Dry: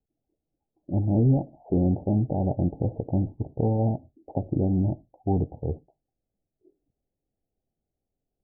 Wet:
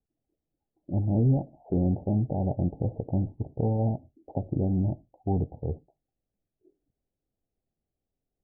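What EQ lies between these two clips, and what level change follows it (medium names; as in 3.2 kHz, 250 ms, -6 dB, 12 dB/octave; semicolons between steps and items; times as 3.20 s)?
dynamic bell 310 Hz, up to -3 dB, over -37 dBFS, Q 2.9; distance through air 370 m; -1.5 dB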